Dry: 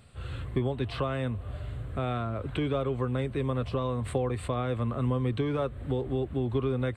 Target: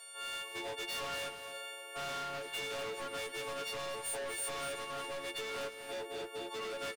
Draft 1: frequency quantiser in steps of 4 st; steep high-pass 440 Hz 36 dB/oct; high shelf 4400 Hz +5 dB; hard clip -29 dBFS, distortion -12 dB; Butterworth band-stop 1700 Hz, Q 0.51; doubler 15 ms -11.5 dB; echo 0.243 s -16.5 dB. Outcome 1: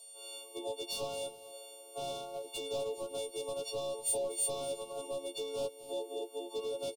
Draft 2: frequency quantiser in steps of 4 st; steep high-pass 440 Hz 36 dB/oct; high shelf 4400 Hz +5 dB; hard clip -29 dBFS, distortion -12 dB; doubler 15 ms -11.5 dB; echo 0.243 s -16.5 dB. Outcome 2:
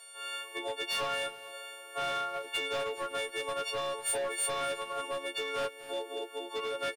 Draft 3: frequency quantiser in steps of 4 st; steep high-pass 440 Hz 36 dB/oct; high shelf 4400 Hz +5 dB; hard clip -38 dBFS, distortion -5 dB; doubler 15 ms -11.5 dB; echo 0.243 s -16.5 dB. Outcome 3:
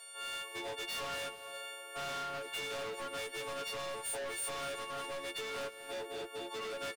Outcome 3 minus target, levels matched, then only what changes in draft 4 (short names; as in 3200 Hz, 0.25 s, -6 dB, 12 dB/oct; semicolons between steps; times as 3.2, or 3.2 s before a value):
echo-to-direct -6.5 dB
change: echo 0.243 s -10 dB